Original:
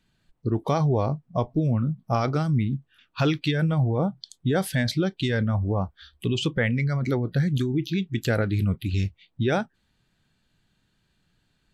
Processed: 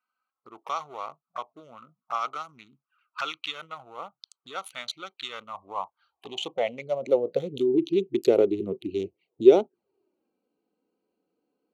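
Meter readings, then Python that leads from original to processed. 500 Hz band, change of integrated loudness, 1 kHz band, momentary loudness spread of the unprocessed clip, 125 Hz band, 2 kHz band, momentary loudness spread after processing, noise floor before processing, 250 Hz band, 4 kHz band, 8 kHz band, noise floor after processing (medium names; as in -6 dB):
+4.5 dB, -1.0 dB, -1.5 dB, 6 LU, -24.0 dB, -9.0 dB, 19 LU, -71 dBFS, -5.0 dB, -2.5 dB, -6.5 dB, under -85 dBFS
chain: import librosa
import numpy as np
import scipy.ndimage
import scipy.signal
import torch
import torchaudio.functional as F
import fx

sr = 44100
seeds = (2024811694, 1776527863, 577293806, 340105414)

y = fx.wiener(x, sr, points=25)
y = fx.env_flanger(y, sr, rest_ms=4.0, full_db=-24.0)
y = fx.filter_sweep_highpass(y, sr, from_hz=1300.0, to_hz=390.0, start_s=5.24, end_s=7.84, q=5.8)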